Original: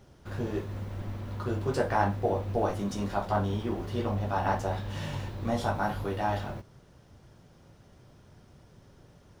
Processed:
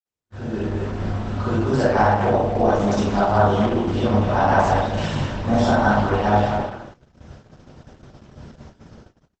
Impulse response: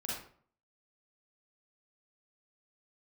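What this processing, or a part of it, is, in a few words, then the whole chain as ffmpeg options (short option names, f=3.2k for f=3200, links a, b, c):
speakerphone in a meeting room: -filter_complex "[0:a]asettb=1/sr,asplit=3[a][b][c];[a]atrim=end=5.144[d];[b]atrim=start=5.14:end=5.85,asetpts=PTS-STARTPTS,afade=t=in:d=0.004:c=qsin,afade=t=out:st=0.706:d=0.004:c=qsin,adynamicequalizer=threshold=0.002:dfrequency=2000:dqfactor=4.7:tfrequency=2000:tqfactor=4.7:attack=5:release=100:ratio=0.375:range=1.5:mode=cutabove:tftype=bell[e];[c]atrim=start=5.846[f];[d][e]acrossfade=d=0.004:c1=hsin:c2=qsin[g];[g][f]acrossfade=d=0.004:c1=qsin:c2=hsin[h];[1:a]atrim=start_sample=2205[i];[h][i]afir=irnorm=-1:irlink=0,asplit=2[j][k];[k]adelay=210,highpass=300,lowpass=3.4k,asoftclip=type=hard:threshold=-21.5dB,volume=-6dB[l];[j][l]amix=inputs=2:normalize=0,dynaudnorm=f=270:g=5:m=15dB,agate=range=-44dB:threshold=-37dB:ratio=16:detection=peak,volume=-2dB" -ar 48000 -c:a libopus -b:a 12k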